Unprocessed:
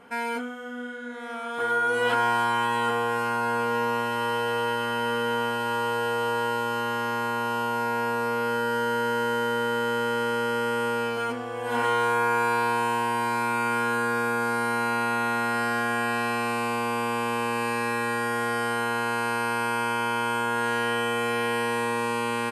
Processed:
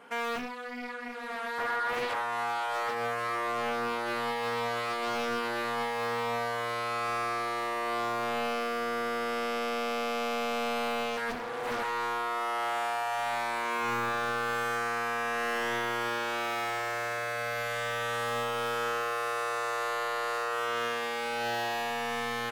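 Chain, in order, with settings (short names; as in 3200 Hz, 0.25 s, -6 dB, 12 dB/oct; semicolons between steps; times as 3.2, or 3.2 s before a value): HPF 410 Hz 6 dB/oct; limiter -22 dBFS, peak gain reduction 8 dB; soft clip -25 dBFS, distortion -18 dB; Doppler distortion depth 0.83 ms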